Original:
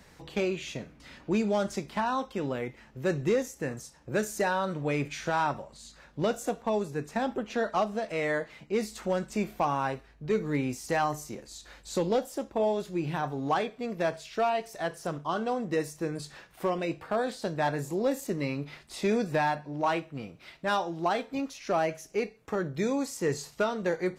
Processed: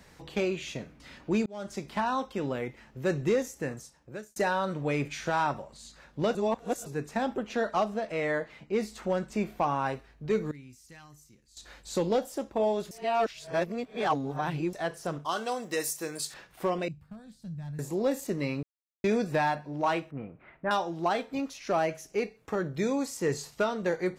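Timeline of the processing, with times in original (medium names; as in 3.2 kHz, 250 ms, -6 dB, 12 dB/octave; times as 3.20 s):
1.46–1.91 s: fade in
3.62–4.36 s: fade out
6.35–6.86 s: reverse
7.94–9.86 s: treble shelf 4.7 kHz -6.5 dB
10.51–11.57 s: amplifier tone stack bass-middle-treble 6-0-2
12.91–14.73 s: reverse
15.25–16.34 s: RIAA curve recording
16.88–17.79 s: FFT filter 180 Hz 0 dB, 370 Hz -29 dB, 830 Hz -27 dB, 2 kHz -24 dB, 12 kHz -14 dB
18.63–19.04 s: mute
20.11–20.71 s: inverse Chebyshev low-pass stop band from 9.7 kHz, stop band 80 dB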